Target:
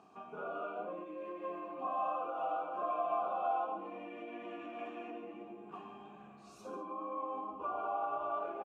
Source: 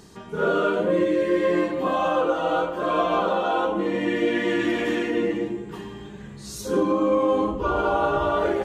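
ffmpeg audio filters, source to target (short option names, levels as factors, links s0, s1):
-filter_complex "[0:a]equalizer=f=250:t=o:w=1:g=7,equalizer=f=500:t=o:w=1:g=-6,equalizer=f=1000:t=o:w=1:g=3,equalizer=f=4000:t=o:w=1:g=-7,acompressor=threshold=0.0398:ratio=10,asplit=3[s0][s1][s2];[s0]bandpass=f=730:t=q:w=8,volume=1[s3];[s1]bandpass=f=1090:t=q:w=8,volume=0.501[s4];[s2]bandpass=f=2440:t=q:w=8,volume=0.355[s5];[s3][s4][s5]amix=inputs=3:normalize=0,aecho=1:1:139:0.282,volume=1.5"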